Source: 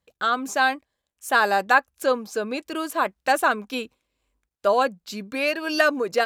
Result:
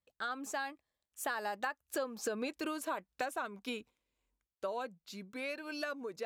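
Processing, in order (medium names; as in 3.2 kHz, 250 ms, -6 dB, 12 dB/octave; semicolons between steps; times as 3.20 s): Doppler pass-by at 2.41 s, 14 m/s, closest 3.8 m; compression 8:1, threshold -41 dBFS, peak gain reduction 19.5 dB; trim +6.5 dB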